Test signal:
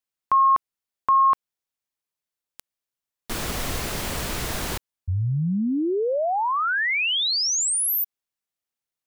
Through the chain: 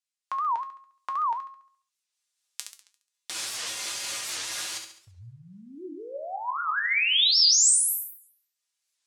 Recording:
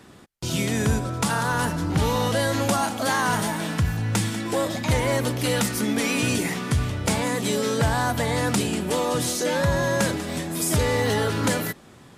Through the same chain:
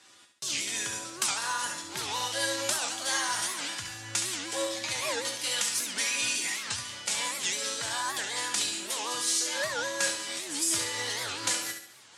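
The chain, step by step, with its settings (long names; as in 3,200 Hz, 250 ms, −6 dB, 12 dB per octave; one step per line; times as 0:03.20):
camcorder AGC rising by 12 dB per second
meter weighting curve ITU-R 468
shaped tremolo triangle 4.2 Hz, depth 35%
tuned comb filter 110 Hz, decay 0.25 s, harmonics odd, mix 80%
on a send: flutter between parallel walls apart 11.9 metres, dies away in 0.59 s
on the sum: wow of a warped record 78 rpm, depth 250 cents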